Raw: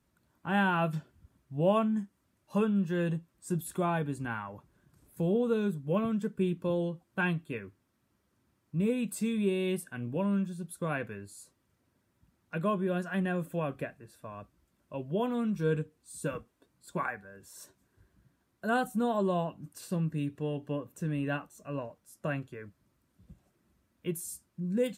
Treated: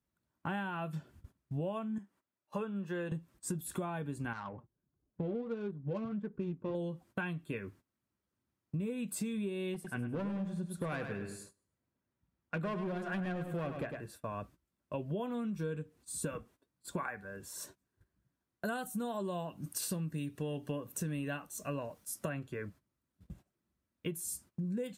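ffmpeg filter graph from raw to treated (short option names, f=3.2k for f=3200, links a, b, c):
-filter_complex "[0:a]asettb=1/sr,asplit=3[a][b][c];[a]atrim=end=1.984[d];[b]atrim=start=1.98:end=3.12,asetpts=PTS-STARTPTS,afade=t=in:d=0.004:c=qsin,afade=t=out:st=1.136:d=0.004:c=qsin,highpass=f=590:p=1,highshelf=f=2.5k:g=-10[e];[c]atrim=start=3.116[f];[d][e]acrossfade=d=0.004:c1=hsin:c2=qsin[g];[g][f]acrossfade=d=0.004:c1=qsin:c2=hsin,asettb=1/sr,asplit=3[h][i][j];[h]atrim=end=4.334[k];[i]atrim=start=4.33:end=6.75,asetpts=PTS-STARTPTS,afade=t=in:d=0.004:c=qsin,afade=t=out:st=2.416:d=0.004:c=qsin,flanger=delay=2.4:depth=6.3:regen=48:speed=1.5:shape=sinusoidal,adynamicsmooth=sensitivity=8:basefreq=1k[l];[j]atrim=start=6.746[m];[k][l]acrossfade=d=0.004:c1=hsin:c2=qsin[n];[n][m]acrossfade=d=0.004:c1=qsin:c2=hsin,asettb=1/sr,asplit=3[o][p][q];[o]atrim=end=9.744[r];[p]atrim=start=9.74:end=14.02,asetpts=PTS-STARTPTS,afade=t=in:d=0.004:c=qsin,afade=t=out:st=4.276:d=0.004:c=qsin,asoftclip=type=hard:threshold=-29.5dB,aemphasis=mode=reproduction:type=cd,aecho=1:1:103|206|309|412:0.376|0.132|0.046|0.0161,atrim=end_sample=188748[s];[q]atrim=start=14.016[t];[r][s]acrossfade=d=0.004:c1=hsin:c2=qsin[u];[u][t]acrossfade=d=0.004:c1=qsin:c2=hsin,asettb=1/sr,asplit=3[v][w][x];[v]atrim=end=18.654[y];[w]atrim=start=18.65:end=22.29,asetpts=PTS-STARTPTS,afade=t=in:d=0.004:c=qsin,afade=t=out:st=3.636:d=0.004:c=qsin,highshelf=f=3.5k:g=10,bandreject=f=7.3k:w=23[z];[x]atrim=start=22.286[aa];[y][z]acrossfade=d=0.004:c1=hsin:c2=qsin[ab];[ab][aa]acrossfade=d=0.004:c1=qsin:c2=hsin,agate=range=-18dB:threshold=-58dB:ratio=16:detection=peak,acompressor=threshold=-39dB:ratio=12,volume=5dB"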